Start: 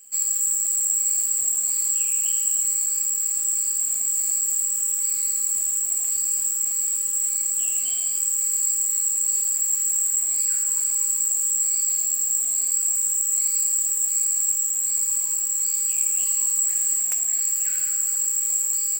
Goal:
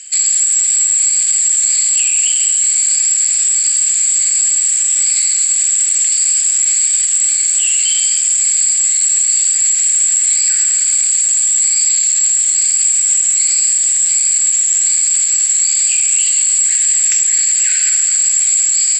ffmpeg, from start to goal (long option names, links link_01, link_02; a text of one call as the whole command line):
ffmpeg -i in.wav -af "acontrast=78,asuperpass=centerf=3400:order=8:qfactor=0.68,alimiter=level_in=21dB:limit=-1dB:release=50:level=0:latency=1,volume=-4dB" out.wav